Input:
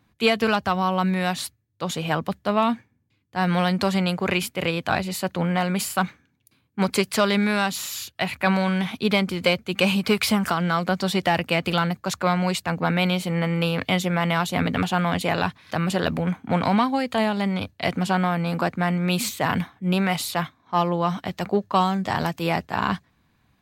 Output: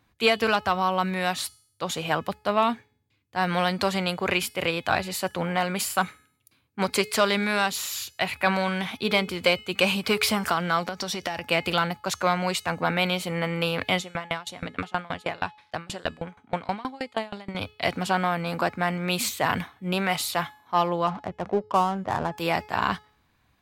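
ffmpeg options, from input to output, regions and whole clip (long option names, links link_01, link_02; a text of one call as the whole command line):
ffmpeg -i in.wav -filter_complex "[0:a]asettb=1/sr,asplit=3[link_01][link_02][link_03];[link_01]atrim=end=10.844[link_04];[link_02]atrim=start=10.84:end=11.46,asetpts=PTS-STARTPTS,afade=type=in:duration=0.004:curve=qsin,afade=type=out:start_time=0.616:duration=0.004:curve=qsin,equalizer=frequency=5700:width_type=o:width=0.25:gain=10.5,acompressor=threshold=-23dB:ratio=12:attack=3.2:release=140:knee=1:detection=peak[link_05];[link_03]atrim=start=11.456[link_06];[link_04][link_05]acrossfade=duration=0.004:curve1=hsin:curve2=qsin[link_07];[link_07][link_06]acrossfade=duration=0.004:curve1=qsin:curve2=hsin,asettb=1/sr,asplit=3[link_08][link_09][link_10];[link_08]atrim=end=13.994[link_11];[link_09]atrim=start=13.99:end=17.55,asetpts=PTS-STARTPTS,afade=type=in:duration=0.004:curve=qsin,afade=type=out:start_time=3.556:duration=0.004:curve=qsin,lowpass=9300,aeval=exprs='val(0)*pow(10,-27*if(lt(mod(6.3*n/s,1),2*abs(6.3)/1000),1-mod(6.3*n/s,1)/(2*abs(6.3)/1000),(mod(6.3*n/s,1)-2*abs(6.3)/1000)/(1-2*abs(6.3)/1000))/20)':channel_layout=same[link_12];[link_10]atrim=start=17.546[link_13];[link_11][link_12]acrossfade=duration=0.004:curve1=hsin:curve2=qsin[link_14];[link_14][link_13]acrossfade=duration=0.004:curve1=qsin:curve2=hsin,asettb=1/sr,asplit=3[link_15][link_16][link_17];[link_15]atrim=end=21.074[link_18];[link_16]atrim=start=21.07:end=22.38,asetpts=PTS-STARTPTS,afade=type=in:duration=0.004:curve=qsin,afade=type=out:start_time=1.306:duration=0.004:curve=qsin,lowpass=1400,adynamicsmooth=sensitivity=6:basefreq=630[link_19];[link_17]atrim=start=22.376[link_20];[link_18][link_19]acrossfade=duration=0.004:curve1=hsin:curve2=qsin[link_21];[link_21][link_20]acrossfade=duration=0.004:curve1=qsin:curve2=hsin,equalizer=frequency=180:width=0.94:gain=-7,bandreject=frequency=424.8:width_type=h:width=4,bandreject=frequency=849.6:width_type=h:width=4,bandreject=frequency=1274.4:width_type=h:width=4,bandreject=frequency=1699.2:width_type=h:width=4,bandreject=frequency=2124:width_type=h:width=4,bandreject=frequency=2548.8:width_type=h:width=4,bandreject=frequency=2973.6:width_type=h:width=4,bandreject=frequency=3398.4:width_type=h:width=4,bandreject=frequency=3823.2:width_type=h:width=4,bandreject=frequency=4248:width_type=h:width=4,bandreject=frequency=4672.8:width_type=h:width=4,bandreject=frequency=5097.6:width_type=h:width=4,bandreject=frequency=5522.4:width_type=h:width=4,bandreject=frequency=5947.2:width_type=h:width=4,bandreject=frequency=6372:width_type=h:width=4,bandreject=frequency=6796.8:width_type=h:width=4,bandreject=frequency=7221.6:width_type=h:width=4,bandreject=frequency=7646.4:width_type=h:width=4,bandreject=frequency=8071.2:width_type=h:width=4,bandreject=frequency=8496:width_type=h:width=4,bandreject=frequency=8920.8:width_type=h:width=4,bandreject=frequency=9345.6:width_type=h:width=4,bandreject=frequency=9770.4:width_type=h:width=4,bandreject=frequency=10195.2:width_type=h:width=4,bandreject=frequency=10620:width_type=h:width=4,bandreject=frequency=11044.8:width_type=h:width=4,bandreject=frequency=11469.6:width_type=h:width=4,bandreject=frequency=11894.4:width_type=h:width=4,bandreject=frequency=12319.2:width_type=h:width=4,bandreject=frequency=12744:width_type=h:width=4,bandreject=frequency=13168.8:width_type=h:width=4,bandreject=frequency=13593.6:width_type=h:width=4,bandreject=frequency=14018.4:width_type=h:width=4" out.wav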